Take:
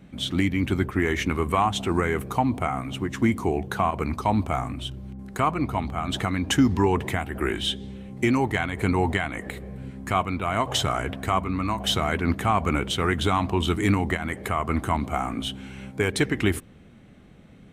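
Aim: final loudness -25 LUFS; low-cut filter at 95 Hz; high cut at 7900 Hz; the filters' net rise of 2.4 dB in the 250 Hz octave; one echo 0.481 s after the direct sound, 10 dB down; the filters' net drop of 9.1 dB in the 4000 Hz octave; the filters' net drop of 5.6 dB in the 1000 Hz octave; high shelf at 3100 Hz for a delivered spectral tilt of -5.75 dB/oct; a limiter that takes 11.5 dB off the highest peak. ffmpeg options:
-af "highpass=95,lowpass=7.9k,equalizer=f=250:t=o:g=3.5,equalizer=f=1k:t=o:g=-6.5,highshelf=f=3.1k:g=-6.5,equalizer=f=4k:t=o:g=-7.5,alimiter=limit=-19dB:level=0:latency=1,aecho=1:1:481:0.316,volume=5dB"

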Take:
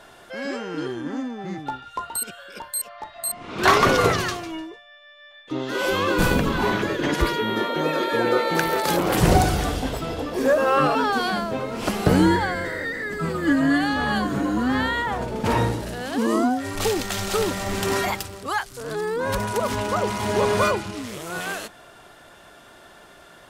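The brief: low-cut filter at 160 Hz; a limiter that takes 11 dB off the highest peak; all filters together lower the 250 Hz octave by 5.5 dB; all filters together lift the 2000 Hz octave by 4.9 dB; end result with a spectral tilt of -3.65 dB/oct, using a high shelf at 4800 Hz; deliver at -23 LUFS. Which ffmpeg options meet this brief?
-af "highpass=160,equalizer=f=250:t=o:g=-6.5,equalizer=f=2k:t=o:g=7.5,highshelf=f=4.8k:g=-6.5,volume=1.5dB,alimiter=limit=-11.5dB:level=0:latency=1"

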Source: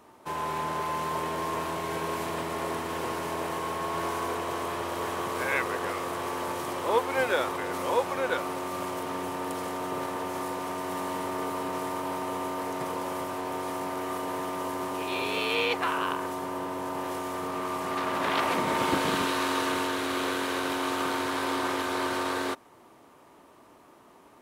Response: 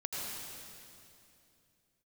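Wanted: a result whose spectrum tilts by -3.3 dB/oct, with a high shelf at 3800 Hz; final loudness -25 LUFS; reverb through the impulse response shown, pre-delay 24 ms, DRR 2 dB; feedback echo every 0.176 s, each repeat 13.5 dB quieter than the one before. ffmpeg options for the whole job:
-filter_complex "[0:a]highshelf=f=3.8k:g=3,aecho=1:1:176|352:0.211|0.0444,asplit=2[a][b];[1:a]atrim=start_sample=2205,adelay=24[c];[b][c]afir=irnorm=-1:irlink=0,volume=-5dB[d];[a][d]amix=inputs=2:normalize=0,volume=2.5dB"

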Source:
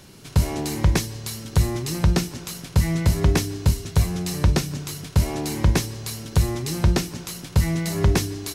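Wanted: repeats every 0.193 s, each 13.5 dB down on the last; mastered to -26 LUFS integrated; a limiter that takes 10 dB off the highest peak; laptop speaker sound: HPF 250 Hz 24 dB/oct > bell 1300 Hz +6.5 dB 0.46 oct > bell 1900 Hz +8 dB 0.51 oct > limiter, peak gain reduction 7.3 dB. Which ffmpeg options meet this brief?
-af "alimiter=limit=-18dB:level=0:latency=1,highpass=f=250:w=0.5412,highpass=f=250:w=1.3066,equalizer=f=1.3k:t=o:w=0.46:g=6.5,equalizer=f=1.9k:t=o:w=0.51:g=8,aecho=1:1:193|386:0.211|0.0444,volume=6.5dB,alimiter=limit=-14.5dB:level=0:latency=1"

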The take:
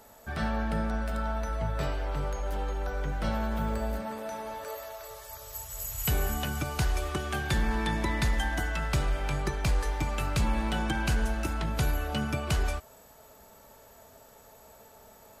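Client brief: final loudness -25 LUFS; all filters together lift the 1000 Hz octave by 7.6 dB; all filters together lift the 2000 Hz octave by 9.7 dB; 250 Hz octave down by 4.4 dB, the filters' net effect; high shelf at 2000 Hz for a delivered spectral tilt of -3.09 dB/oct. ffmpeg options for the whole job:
-af "equalizer=f=250:t=o:g=-6.5,equalizer=f=1k:t=o:g=6.5,highshelf=f=2k:g=8.5,equalizer=f=2k:t=o:g=5.5,volume=2dB"

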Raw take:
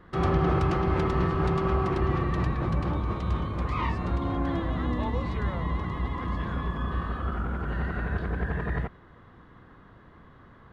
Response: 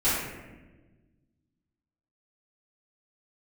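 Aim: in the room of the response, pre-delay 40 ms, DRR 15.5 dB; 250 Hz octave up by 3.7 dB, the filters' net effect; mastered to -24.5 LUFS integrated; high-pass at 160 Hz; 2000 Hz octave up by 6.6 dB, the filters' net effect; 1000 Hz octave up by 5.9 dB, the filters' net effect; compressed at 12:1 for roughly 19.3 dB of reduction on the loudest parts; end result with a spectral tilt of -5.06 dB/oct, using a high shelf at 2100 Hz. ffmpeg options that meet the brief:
-filter_complex "[0:a]highpass=160,equalizer=f=250:t=o:g=6.5,equalizer=f=1k:t=o:g=4.5,equalizer=f=2k:t=o:g=4,highshelf=f=2.1k:g=5,acompressor=threshold=-39dB:ratio=12,asplit=2[a][b];[1:a]atrim=start_sample=2205,adelay=40[c];[b][c]afir=irnorm=-1:irlink=0,volume=-29dB[d];[a][d]amix=inputs=2:normalize=0,volume=18.5dB"

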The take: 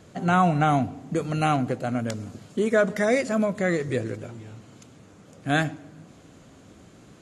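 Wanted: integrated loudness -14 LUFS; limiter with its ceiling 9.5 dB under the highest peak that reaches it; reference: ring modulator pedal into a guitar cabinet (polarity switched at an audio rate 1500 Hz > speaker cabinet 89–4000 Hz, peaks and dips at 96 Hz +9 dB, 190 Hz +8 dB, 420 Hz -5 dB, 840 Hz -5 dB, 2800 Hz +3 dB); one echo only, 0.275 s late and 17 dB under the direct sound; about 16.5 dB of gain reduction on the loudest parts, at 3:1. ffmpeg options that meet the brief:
-af "acompressor=threshold=-39dB:ratio=3,alimiter=level_in=9.5dB:limit=-24dB:level=0:latency=1,volume=-9.5dB,aecho=1:1:275:0.141,aeval=exprs='val(0)*sgn(sin(2*PI*1500*n/s))':c=same,highpass=89,equalizer=f=96:t=q:w=4:g=9,equalizer=f=190:t=q:w=4:g=8,equalizer=f=420:t=q:w=4:g=-5,equalizer=f=840:t=q:w=4:g=-5,equalizer=f=2.8k:t=q:w=4:g=3,lowpass=f=4k:w=0.5412,lowpass=f=4k:w=1.3066,volume=28.5dB"

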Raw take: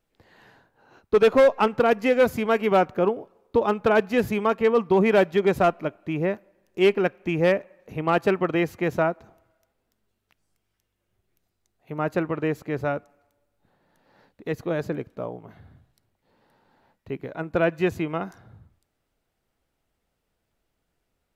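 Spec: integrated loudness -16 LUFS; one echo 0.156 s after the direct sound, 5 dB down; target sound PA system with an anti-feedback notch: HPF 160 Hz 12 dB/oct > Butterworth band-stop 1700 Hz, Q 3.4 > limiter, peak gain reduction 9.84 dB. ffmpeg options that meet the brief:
-af "highpass=160,asuperstop=centerf=1700:order=8:qfactor=3.4,aecho=1:1:156:0.562,volume=10.5dB,alimiter=limit=-4.5dB:level=0:latency=1"

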